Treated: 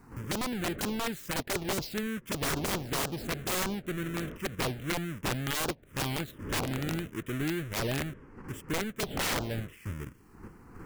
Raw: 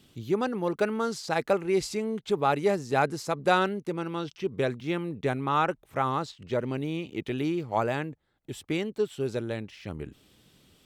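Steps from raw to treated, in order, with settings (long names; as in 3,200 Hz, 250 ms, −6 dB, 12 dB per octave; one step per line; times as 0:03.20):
each half-wave held at its own peak
wind on the microphone 550 Hz −34 dBFS
dynamic equaliser 1,600 Hz, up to +5 dB, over −43 dBFS, Q 3.8
in parallel at −1 dB: output level in coarse steps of 20 dB
on the sum: phaser swept by the level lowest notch 560 Hz, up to 2,200 Hz, full sweep at −12 dBFS
wrap-around overflow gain 18 dB
level −7 dB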